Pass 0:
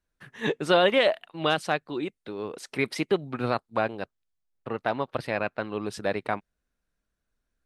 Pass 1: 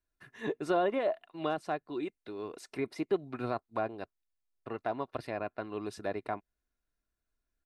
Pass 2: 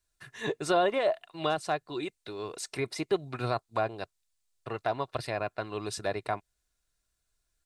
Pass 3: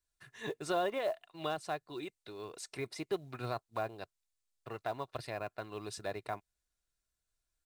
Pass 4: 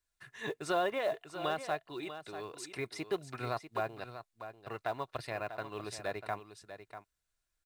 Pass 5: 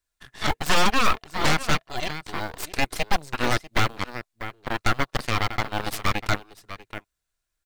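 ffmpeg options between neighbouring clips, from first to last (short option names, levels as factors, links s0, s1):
-filter_complex "[0:a]bandreject=f=3200:w=13,aecho=1:1:2.9:0.37,acrossover=split=1300[s0][s1];[s1]acompressor=threshold=0.01:ratio=6[s2];[s0][s2]amix=inputs=2:normalize=0,volume=0.447"
-af "equalizer=f=125:t=o:w=1:g=5,equalizer=f=250:t=o:w=1:g=-8,equalizer=f=4000:t=o:w=1:g=5,equalizer=f=8000:t=o:w=1:g=10,volume=1.68"
-af "acrusher=bits=7:mode=log:mix=0:aa=0.000001,volume=0.422"
-filter_complex "[0:a]acrossover=split=2200[s0][s1];[s0]crystalizer=i=6:c=0[s2];[s2][s1]amix=inputs=2:normalize=0,aecho=1:1:643:0.282"
-af "aeval=exprs='0.106*(cos(1*acos(clip(val(0)/0.106,-1,1)))-cos(1*PI/2))+0.0335*(cos(3*acos(clip(val(0)/0.106,-1,1)))-cos(3*PI/2))+0.00299*(cos(5*acos(clip(val(0)/0.106,-1,1)))-cos(5*PI/2))+0.0106*(cos(7*acos(clip(val(0)/0.106,-1,1)))-cos(7*PI/2))+0.0473*(cos(8*acos(clip(val(0)/0.106,-1,1)))-cos(8*PI/2))':c=same,volume=2.82"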